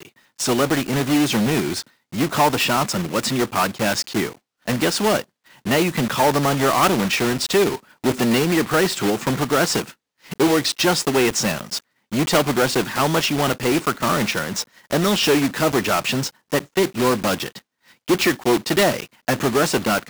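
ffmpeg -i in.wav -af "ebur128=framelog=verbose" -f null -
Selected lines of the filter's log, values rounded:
Integrated loudness:
  I:         -19.9 LUFS
  Threshold: -30.2 LUFS
Loudness range:
  LRA:         2.0 LU
  Threshold: -40.1 LUFS
  LRA low:   -21.1 LUFS
  LRA high:  -19.1 LUFS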